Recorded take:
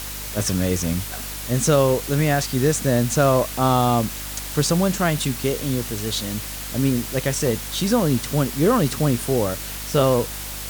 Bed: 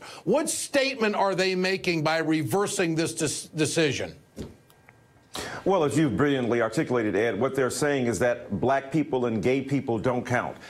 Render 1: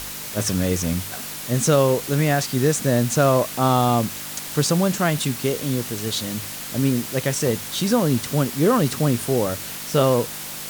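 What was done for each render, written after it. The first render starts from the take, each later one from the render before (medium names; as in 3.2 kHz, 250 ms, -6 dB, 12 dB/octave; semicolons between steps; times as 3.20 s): de-hum 50 Hz, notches 2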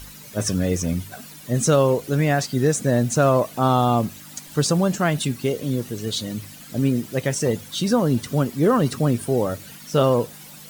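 noise reduction 13 dB, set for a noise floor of -33 dBFS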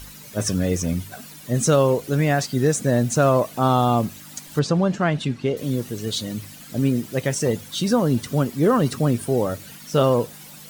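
4.59–5.57 s: Bessel low-pass 3.4 kHz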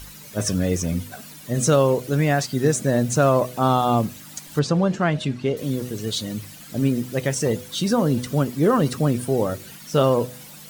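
de-hum 124.5 Hz, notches 5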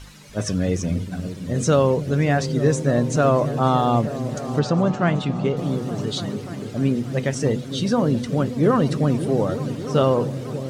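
distance through air 65 m; delay with an opening low-pass 291 ms, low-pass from 200 Hz, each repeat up 1 oct, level -6 dB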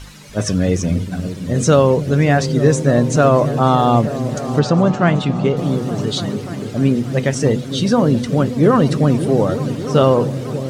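trim +5.5 dB; peak limiter -2 dBFS, peak gain reduction 2 dB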